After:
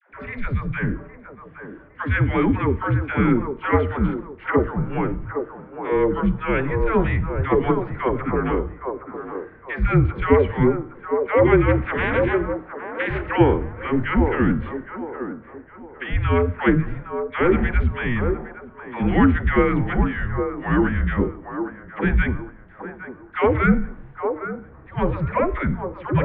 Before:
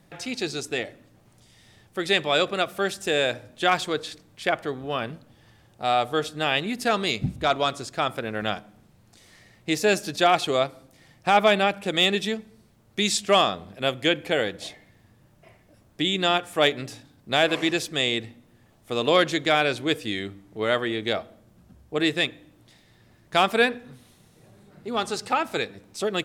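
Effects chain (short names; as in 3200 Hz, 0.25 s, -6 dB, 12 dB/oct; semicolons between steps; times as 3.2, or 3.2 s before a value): 11.67–13.29 spectral limiter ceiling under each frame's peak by 24 dB; dynamic EQ 1200 Hz, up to -6 dB, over -35 dBFS, Q 1.3; in parallel at -10 dB: wavefolder -22.5 dBFS; on the sum: de-hum 146.7 Hz, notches 30; dispersion lows, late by 0.149 s, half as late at 630 Hz; mistuned SSB -270 Hz 150–2200 Hz; on a send: band-limited delay 0.811 s, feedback 32%, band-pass 630 Hz, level -5 dB; on the sum: gain +6 dB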